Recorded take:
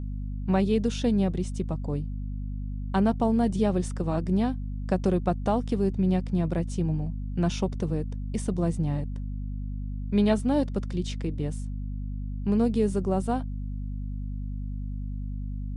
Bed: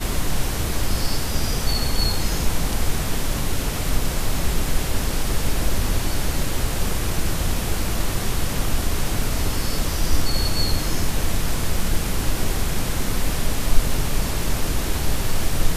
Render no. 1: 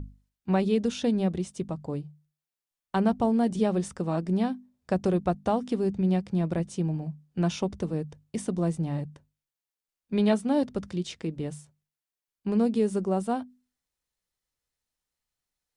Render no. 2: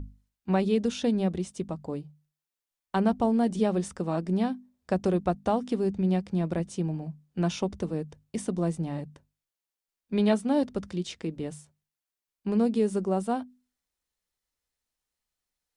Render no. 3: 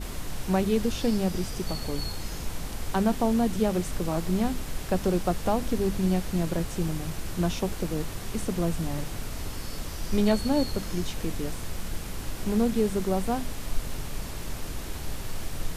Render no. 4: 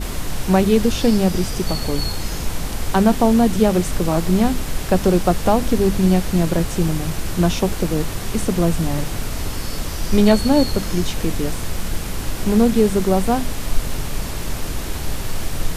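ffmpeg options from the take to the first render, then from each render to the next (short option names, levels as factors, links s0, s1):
-af "bandreject=f=50:t=h:w=6,bandreject=f=100:t=h:w=6,bandreject=f=150:t=h:w=6,bandreject=f=200:t=h:w=6,bandreject=f=250:t=h:w=6"
-af "equalizer=f=130:t=o:w=0.25:g=-13"
-filter_complex "[1:a]volume=0.251[s0];[0:a][s0]amix=inputs=2:normalize=0"
-af "volume=2.99"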